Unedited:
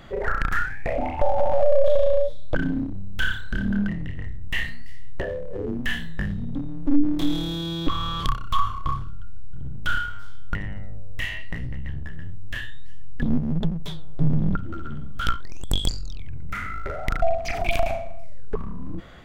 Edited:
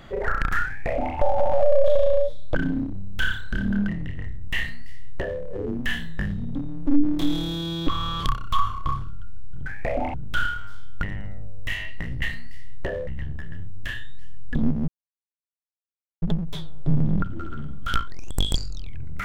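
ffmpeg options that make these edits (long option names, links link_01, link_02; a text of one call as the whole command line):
ffmpeg -i in.wav -filter_complex "[0:a]asplit=6[link_01][link_02][link_03][link_04][link_05][link_06];[link_01]atrim=end=9.662[link_07];[link_02]atrim=start=0.668:end=1.152[link_08];[link_03]atrim=start=9.658:end=11.742[link_09];[link_04]atrim=start=4.568:end=5.422[link_10];[link_05]atrim=start=11.738:end=13.55,asetpts=PTS-STARTPTS,afade=type=out:start_time=1.808:duration=0.004:curve=hsin,apad=pad_dur=1.34[link_11];[link_06]atrim=start=13.55,asetpts=PTS-STARTPTS,afade=type=in:duration=0.004:curve=hsin[link_12];[link_07][link_08]acrossfade=duration=0.004:curve1=hsin:curve2=hsin[link_13];[link_13][link_09]acrossfade=duration=0.004:curve1=hsin:curve2=hsin[link_14];[link_14][link_10]acrossfade=duration=0.004:curve1=hsin:curve2=hsin[link_15];[link_11][link_12]concat=n=2:v=0:a=1[link_16];[link_15][link_16]acrossfade=duration=0.004:curve1=hsin:curve2=hsin" out.wav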